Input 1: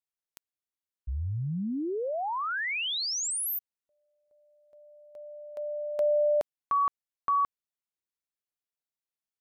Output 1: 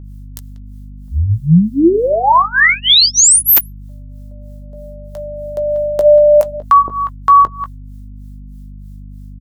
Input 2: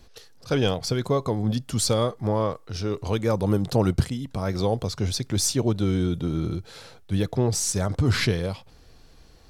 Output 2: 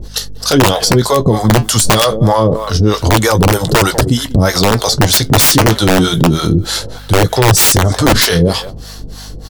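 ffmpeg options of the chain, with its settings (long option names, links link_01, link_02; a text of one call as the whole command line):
ffmpeg -i in.wav -filter_complex "[0:a]highshelf=frequency=3700:gain=9,asplit=2[link_01][link_02];[link_02]adelay=18,volume=-11.5dB[link_03];[link_01][link_03]amix=inputs=2:normalize=0,asplit=2[link_04][link_05];[link_05]adelay=190,highpass=300,lowpass=3400,asoftclip=type=hard:threshold=-15.5dB,volume=-16dB[link_06];[link_04][link_06]amix=inputs=2:normalize=0,acrossover=split=560[link_07][link_08];[link_07]aeval=exprs='val(0)*(1-1/2+1/2*cos(2*PI*3.2*n/s))':channel_layout=same[link_09];[link_08]aeval=exprs='val(0)*(1-1/2-1/2*cos(2*PI*3.2*n/s))':channel_layout=same[link_10];[link_09][link_10]amix=inputs=2:normalize=0,equalizer=frequency=2400:width_type=o:width=0.25:gain=-10,aeval=exprs='(mod(7.94*val(0)+1,2)-1)/7.94':channel_layout=same,aeval=exprs='val(0)+0.00158*(sin(2*PI*50*n/s)+sin(2*PI*2*50*n/s)/2+sin(2*PI*3*50*n/s)/3+sin(2*PI*4*50*n/s)/4+sin(2*PI*5*50*n/s)/5)':channel_layout=same,flanger=delay=2.1:depth=4.4:regen=-70:speed=0.27:shape=sinusoidal,alimiter=level_in=30dB:limit=-1dB:release=50:level=0:latency=1,volume=-1dB" out.wav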